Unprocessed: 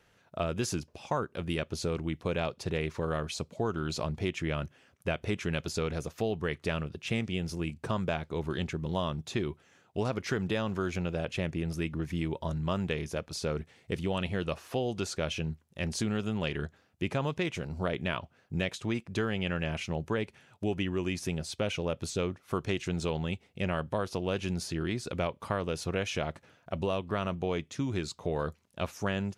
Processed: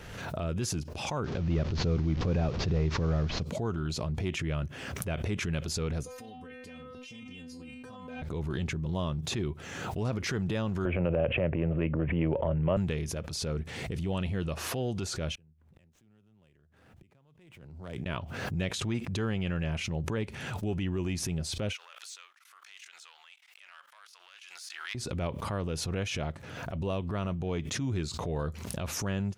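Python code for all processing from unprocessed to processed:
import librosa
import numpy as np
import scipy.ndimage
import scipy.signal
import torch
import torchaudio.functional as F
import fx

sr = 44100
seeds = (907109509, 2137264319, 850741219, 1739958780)

y = fx.chain(x, sr, fx.delta_mod(bps=32000, step_db=-45.0),
    fx.low_shelf(hz=400.0, db=5.5), at=(1.24, 3.43))
y = fx.chain(y, sr, fx.stiff_resonator(f0_hz=250.0, decay_s=0.45, stiffness=0.002),
    fx.env_flatten(amount_pct=100), at=(6.03, 8.22))
y = fx.chain(y, sr, fx.steep_lowpass(hz=3000.0, slope=72),
    fx.peak_eq(hz=560.0, db=14.0, octaves=0.61),
    fx.band_squash(depth_pct=70), at=(10.85, 12.77))
y = fx.chain(y, sr, fx.median_filter(points=9),
    fx.gate_flip(shuts_db=-35.0, range_db=-35),
    fx.band_squash(depth_pct=40), at=(15.35, 18.06))
y = fx.chain(y, sr, fx.level_steps(step_db=21),
    fx.leveller(passes=1),
    fx.highpass(hz=1200.0, slope=24), at=(21.73, 24.95))
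y = fx.low_shelf(y, sr, hz=180.0, db=9.5)
y = fx.transient(y, sr, attack_db=-7, sustain_db=3)
y = fx.pre_swell(y, sr, db_per_s=37.0)
y = y * librosa.db_to_amplitude(-3.0)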